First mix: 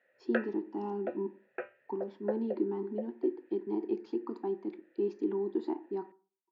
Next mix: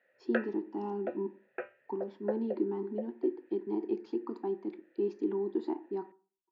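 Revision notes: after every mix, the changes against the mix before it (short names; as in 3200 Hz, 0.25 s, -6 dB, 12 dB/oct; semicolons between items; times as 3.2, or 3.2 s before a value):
none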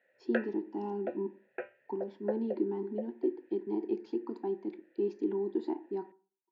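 master: add bell 1200 Hz -12 dB 0.22 oct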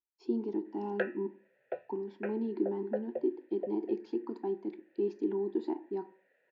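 background: entry +0.65 s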